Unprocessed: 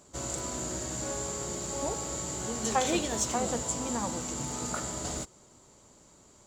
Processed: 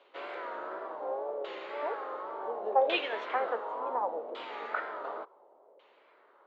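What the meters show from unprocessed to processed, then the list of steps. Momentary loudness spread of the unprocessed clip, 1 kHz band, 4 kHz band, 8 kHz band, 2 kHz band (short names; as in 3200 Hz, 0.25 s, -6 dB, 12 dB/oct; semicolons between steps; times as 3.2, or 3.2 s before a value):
6 LU, +2.5 dB, -4.0 dB, under -40 dB, +3.0 dB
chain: LFO low-pass saw down 0.69 Hz 560–3000 Hz; wow and flutter 92 cents; elliptic band-pass 430–3800 Hz, stop band 80 dB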